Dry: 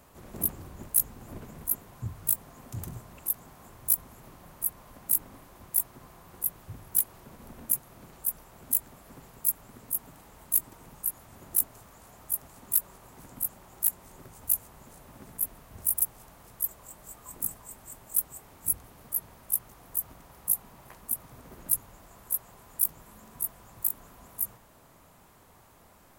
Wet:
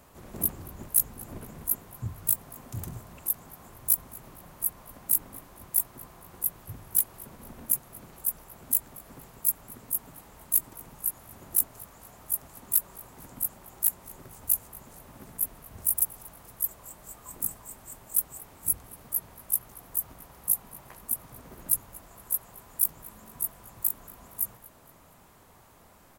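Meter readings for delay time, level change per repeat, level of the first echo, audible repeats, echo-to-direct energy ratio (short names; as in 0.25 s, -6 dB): 0.233 s, -7.5 dB, -22.0 dB, 2, -21.0 dB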